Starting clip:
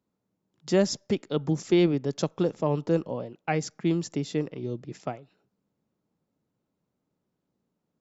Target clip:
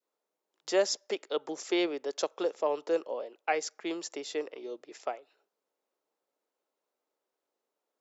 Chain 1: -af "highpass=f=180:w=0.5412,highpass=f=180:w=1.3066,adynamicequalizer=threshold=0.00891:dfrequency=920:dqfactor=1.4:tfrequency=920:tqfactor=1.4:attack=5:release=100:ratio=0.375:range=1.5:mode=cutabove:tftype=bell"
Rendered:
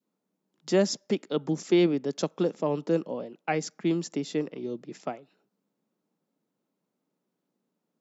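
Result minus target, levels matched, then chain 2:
250 Hz band +5.5 dB
-af "highpass=f=430:w=0.5412,highpass=f=430:w=1.3066,adynamicequalizer=threshold=0.00891:dfrequency=920:dqfactor=1.4:tfrequency=920:tqfactor=1.4:attack=5:release=100:ratio=0.375:range=1.5:mode=cutabove:tftype=bell"

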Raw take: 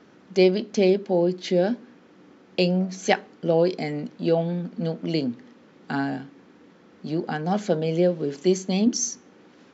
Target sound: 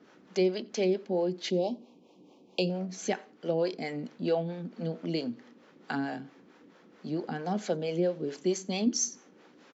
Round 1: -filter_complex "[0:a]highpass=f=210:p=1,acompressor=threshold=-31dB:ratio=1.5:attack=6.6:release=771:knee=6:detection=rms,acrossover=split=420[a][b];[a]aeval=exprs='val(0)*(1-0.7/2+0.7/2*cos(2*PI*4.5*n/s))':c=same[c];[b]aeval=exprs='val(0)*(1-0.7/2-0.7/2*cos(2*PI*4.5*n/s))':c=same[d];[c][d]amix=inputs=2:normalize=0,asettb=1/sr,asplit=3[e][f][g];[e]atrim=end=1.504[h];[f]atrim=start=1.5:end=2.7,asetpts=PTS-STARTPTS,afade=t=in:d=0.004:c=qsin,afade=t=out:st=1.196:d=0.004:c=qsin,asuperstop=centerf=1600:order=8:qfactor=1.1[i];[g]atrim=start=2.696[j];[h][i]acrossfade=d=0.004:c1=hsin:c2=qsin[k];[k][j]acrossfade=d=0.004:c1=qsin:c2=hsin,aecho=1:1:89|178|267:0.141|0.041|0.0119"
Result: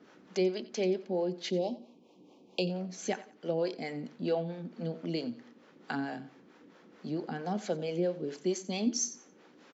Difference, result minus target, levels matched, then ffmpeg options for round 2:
echo-to-direct +9.5 dB; compressor: peak gain reduction +2.5 dB
-filter_complex "[0:a]highpass=f=210:p=1,acompressor=threshold=-23dB:ratio=1.5:attack=6.6:release=771:knee=6:detection=rms,acrossover=split=420[a][b];[a]aeval=exprs='val(0)*(1-0.7/2+0.7/2*cos(2*PI*4.5*n/s))':c=same[c];[b]aeval=exprs='val(0)*(1-0.7/2-0.7/2*cos(2*PI*4.5*n/s))':c=same[d];[c][d]amix=inputs=2:normalize=0,asettb=1/sr,asplit=3[e][f][g];[e]atrim=end=1.504[h];[f]atrim=start=1.5:end=2.7,asetpts=PTS-STARTPTS,afade=t=in:d=0.004:c=qsin,afade=t=out:st=1.196:d=0.004:c=qsin,asuperstop=centerf=1600:order=8:qfactor=1.1[i];[g]atrim=start=2.696[j];[h][i]acrossfade=d=0.004:c1=hsin:c2=qsin[k];[k][j]acrossfade=d=0.004:c1=qsin:c2=hsin,aecho=1:1:89|178:0.0473|0.0137"

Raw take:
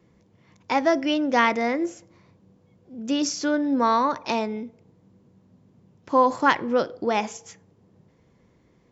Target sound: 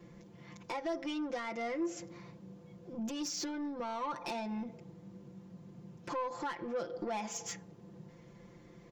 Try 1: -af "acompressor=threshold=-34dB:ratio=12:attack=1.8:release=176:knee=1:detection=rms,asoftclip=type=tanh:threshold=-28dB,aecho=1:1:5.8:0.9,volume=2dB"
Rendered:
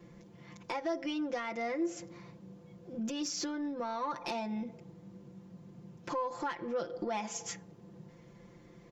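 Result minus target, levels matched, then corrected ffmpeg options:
soft clip: distortion -12 dB
-af "acompressor=threshold=-34dB:ratio=12:attack=1.8:release=176:knee=1:detection=rms,asoftclip=type=tanh:threshold=-35.5dB,aecho=1:1:5.8:0.9,volume=2dB"

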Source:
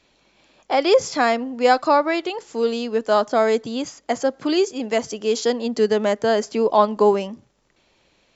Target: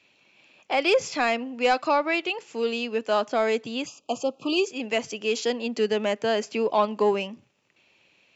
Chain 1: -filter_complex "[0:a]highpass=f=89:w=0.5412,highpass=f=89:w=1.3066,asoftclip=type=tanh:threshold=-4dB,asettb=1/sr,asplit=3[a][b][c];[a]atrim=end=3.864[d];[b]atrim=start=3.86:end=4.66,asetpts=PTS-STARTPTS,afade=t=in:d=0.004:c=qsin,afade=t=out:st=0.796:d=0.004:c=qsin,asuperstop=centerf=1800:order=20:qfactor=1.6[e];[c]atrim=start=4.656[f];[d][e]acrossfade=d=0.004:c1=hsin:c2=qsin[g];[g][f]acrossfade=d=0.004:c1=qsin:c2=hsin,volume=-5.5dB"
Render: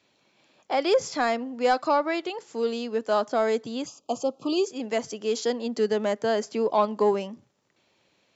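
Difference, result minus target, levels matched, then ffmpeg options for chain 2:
2000 Hz band -4.5 dB
-filter_complex "[0:a]highpass=f=89:w=0.5412,highpass=f=89:w=1.3066,equalizer=f=2.6k:t=o:w=0.52:g=12.5,asoftclip=type=tanh:threshold=-4dB,asettb=1/sr,asplit=3[a][b][c];[a]atrim=end=3.864[d];[b]atrim=start=3.86:end=4.66,asetpts=PTS-STARTPTS,afade=t=in:d=0.004:c=qsin,afade=t=out:st=0.796:d=0.004:c=qsin,asuperstop=centerf=1800:order=20:qfactor=1.6[e];[c]atrim=start=4.656[f];[d][e]acrossfade=d=0.004:c1=hsin:c2=qsin[g];[g][f]acrossfade=d=0.004:c1=qsin:c2=hsin,volume=-5.5dB"

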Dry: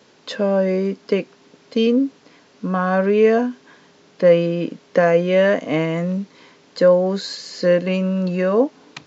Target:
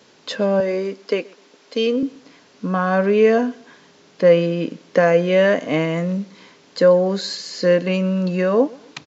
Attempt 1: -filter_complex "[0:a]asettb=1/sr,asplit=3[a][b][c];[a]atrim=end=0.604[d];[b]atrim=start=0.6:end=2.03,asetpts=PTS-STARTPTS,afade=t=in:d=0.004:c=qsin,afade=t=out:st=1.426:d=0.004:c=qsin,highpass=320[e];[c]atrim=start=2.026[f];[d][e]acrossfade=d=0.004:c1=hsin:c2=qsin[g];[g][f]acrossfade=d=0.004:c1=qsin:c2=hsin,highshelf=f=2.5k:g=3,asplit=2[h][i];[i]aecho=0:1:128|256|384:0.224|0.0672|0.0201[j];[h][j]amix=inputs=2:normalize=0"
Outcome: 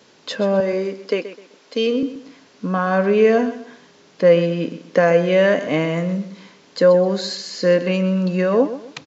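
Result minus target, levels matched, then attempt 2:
echo-to-direct +10.5 dB
-filter_complex "[0:a]asettb=1/sr,asplit=3[a][b][c];[a]atrim=end=0.604[d];[b]atrim=start=0.6:end=2.03,asetpts=PTS-STARTPTS,afade=t=in:d=0.004:c=qsin,afade=t=out:st=1.426:d=0.004:c=qsin,highpass=320[e];[c]atrim=start=2.026[f];[d][e]acrossfade=d=0.004:c1=hsin:c2=qsin[g];[g][f]acrossfade=d=0.004:c1=qsin:c2=hsin,highshelf=f=2.5k:g=3,asplit=2[h][i];[i]aecho=0:1:128|256:0.0668|0.0201[j];[h][j]amix=inputs=2:normalize=0"

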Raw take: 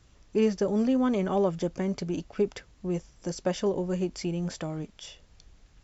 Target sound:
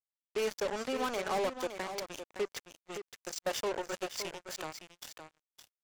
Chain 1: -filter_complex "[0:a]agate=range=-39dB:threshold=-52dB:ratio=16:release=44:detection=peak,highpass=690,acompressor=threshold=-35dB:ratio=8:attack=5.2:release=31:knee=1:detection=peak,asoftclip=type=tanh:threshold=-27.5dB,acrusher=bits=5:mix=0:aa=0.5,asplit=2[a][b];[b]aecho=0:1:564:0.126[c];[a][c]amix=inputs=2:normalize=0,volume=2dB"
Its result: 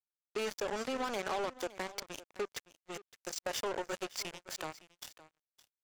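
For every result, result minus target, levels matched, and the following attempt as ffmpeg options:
compressor: peak gain reduction +8.5 dB; echo-to-direct -8.5 dB
-filter_complex "[0:a]agate=range=-39dB:threshold=-52dB:ratio=16:release=44:detection=peak,highpass=690,asoftclip=type=tanh:threshold=-27.5dB,acrusher=bits=5:mix=0:aa=0.5,asplit=2[a][b];[b]aecho=0:1:564:0.126[c];[a][c]amix=inputs=2:normalize=0,volume=2dB"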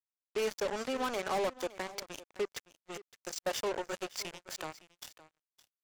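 echo-to-direct -8.5 dB
-filter_complex "[0:a]agate=range=-39dB:threshold=-52dB:ratio=16:release=44:detection=peak,highpass=690,asoftclip=type=tanh:threshold=-27.5dB,acrusher=bits=5:mix=0:aa=0.5,asplit=2[a][b];[b]aecho=0:1:564:0.335[c];[a][c]amix=inputs=2:normalize=0,volume=2dB"

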